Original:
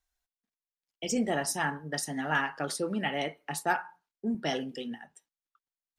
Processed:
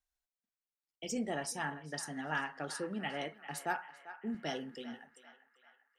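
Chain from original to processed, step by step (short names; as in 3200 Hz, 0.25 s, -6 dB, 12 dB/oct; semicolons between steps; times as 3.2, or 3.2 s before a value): 1.18–3.35 LPF 11000 Hz 24 dB/oct; narrowing echo 0.394 s, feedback 63%, band-pass 1500 Hz, level -12 dB; gain -7.5 dB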